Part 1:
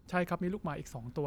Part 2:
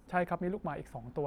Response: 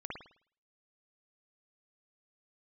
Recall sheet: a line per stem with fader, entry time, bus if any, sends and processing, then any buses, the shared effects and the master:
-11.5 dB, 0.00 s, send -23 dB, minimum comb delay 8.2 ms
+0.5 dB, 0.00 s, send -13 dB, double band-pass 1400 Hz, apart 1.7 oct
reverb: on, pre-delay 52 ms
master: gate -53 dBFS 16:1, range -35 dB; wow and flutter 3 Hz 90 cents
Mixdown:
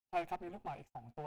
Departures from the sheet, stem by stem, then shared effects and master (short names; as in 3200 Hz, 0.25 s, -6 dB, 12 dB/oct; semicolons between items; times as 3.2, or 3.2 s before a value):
stem 2: send off; reverb return -6.0 dB